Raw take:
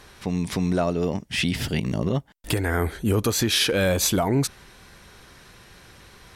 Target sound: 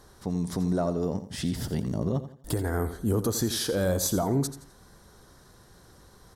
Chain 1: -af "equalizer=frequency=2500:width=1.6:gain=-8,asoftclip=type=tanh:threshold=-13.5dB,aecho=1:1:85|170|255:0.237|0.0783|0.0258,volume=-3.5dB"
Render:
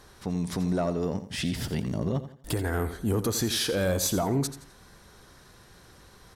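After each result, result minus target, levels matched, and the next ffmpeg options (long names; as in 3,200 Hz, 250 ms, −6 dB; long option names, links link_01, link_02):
soft clipping: distortion +15 dB; 2,000 Hz band +4.0 dB
-af "equalizer=frequency=2500:width=1.6:gain=-8,asoftclip=type=tanh:threshold=-5.5dB,aecho=1:1:85|170|255:0.237|0.0783|0.0258,volume=-3.5dB"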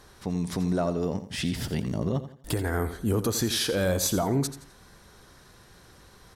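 2,000 Hz band +4.0 dB
-af "equalizer=frequency=2500:width=1.6:gain=-18.5,asoftclip=type=tanh:threshold=-5.5dB,aecho=1:1:85|170|255:0.237|0.0783|0.0258,volume=-3.5dB"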